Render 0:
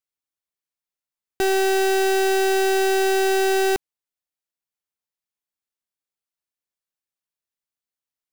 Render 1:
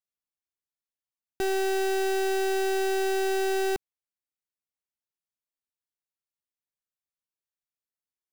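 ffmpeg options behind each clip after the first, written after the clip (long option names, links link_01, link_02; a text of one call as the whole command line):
ffmpeg -i in.wav -af "lowshelf=frequency=360:gain=4,volume=-8.5dB" out.wav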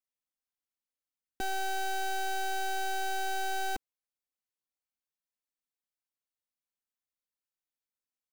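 ffmpeg -i in.wav -af "aecho=1:1:3.9:0.76,volume=-5.5dB" out.wav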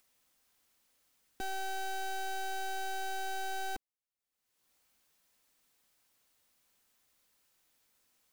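ffmpeg -i in.wav -af "acompressor=mode=upward:threshold=-49dB:ratio=2.5,volume=-4.5dB" out.wav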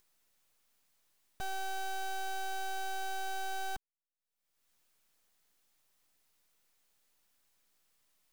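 ffmpeg -i in.wav -af "aeval=exprs='abs(val(0))':channel_layout=same" out.wav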